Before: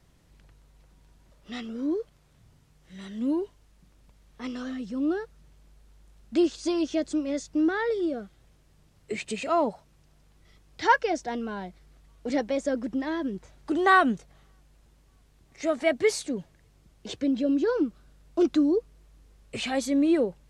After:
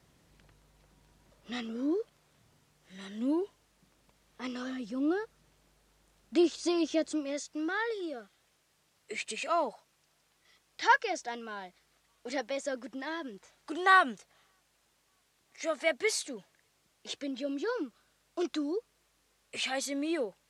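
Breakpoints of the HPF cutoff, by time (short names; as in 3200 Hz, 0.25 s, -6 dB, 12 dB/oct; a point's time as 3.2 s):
HPF 6 dB/oct
1.52 s 150 Hz
1.95 s 330 Hz
6.96 s 330 Hz
7.5 s 1100 Hz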